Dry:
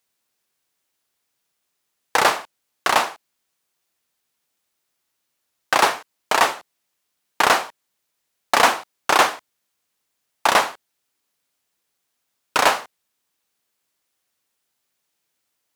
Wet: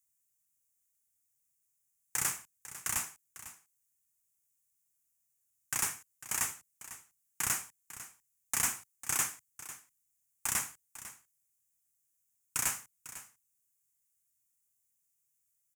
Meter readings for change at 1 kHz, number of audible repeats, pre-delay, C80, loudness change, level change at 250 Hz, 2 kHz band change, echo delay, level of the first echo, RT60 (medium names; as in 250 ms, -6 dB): -26.0 dB, 1, no reverb, no reverb, -14.0 dB, -19.0 dB, -19.5 dB, 499 ms, -15.0 dB, no reverb